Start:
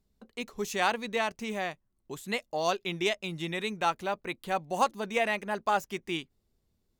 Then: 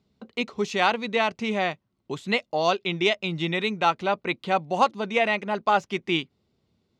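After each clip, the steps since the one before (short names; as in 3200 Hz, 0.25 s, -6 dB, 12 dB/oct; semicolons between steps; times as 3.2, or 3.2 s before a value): Chebyshev band-pass 120–3900 Hz, order 2; notch 1700 Hz, Q 10; in parallel at +2.5 dB: vocal rider within 4 dB 0.5 s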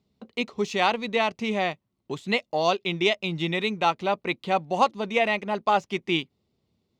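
bell 1500 Hz -5.5 dB 0.4 oct; in parallel at -9 dB: crossover distortion -44 dBFS; on the sum: gain -2.5 dB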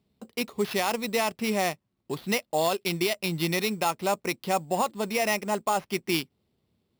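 limiter -15.5 dBFS, peak gain reduction 8.5 dB; sample-rate reducer 7900 Hz, jitter 0%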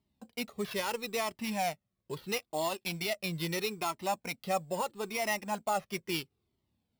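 cascading flanger falling 0.76 Hz; gain -2 dB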